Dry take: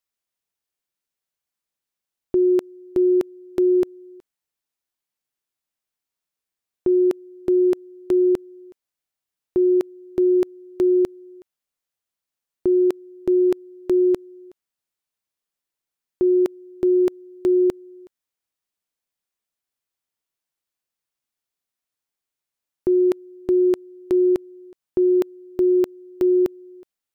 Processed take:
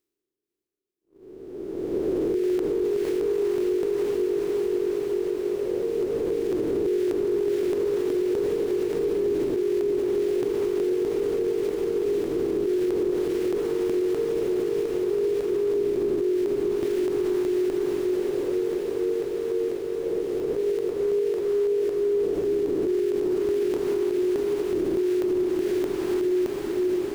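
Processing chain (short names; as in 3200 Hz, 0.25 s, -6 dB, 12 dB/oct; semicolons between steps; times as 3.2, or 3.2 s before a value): spectral swells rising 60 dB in 2.12 s; gate -49 dBFS, range -53 dB; in parallel at -2 dB: compressor, threshold -28 dBFS, peak gain reduction 12.5 dB; on the sum: echoes that change speed 0.191 s, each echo +2 st, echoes 2, each echo -6 dB; reverse; upward compressor, threshold -39 dBFS; reverse; diffused feedback echo 0.514 s, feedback 80%, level -4 dB; limiter -14.5 dBFS, peak gain reduction 11 dB; gain -3.5 dB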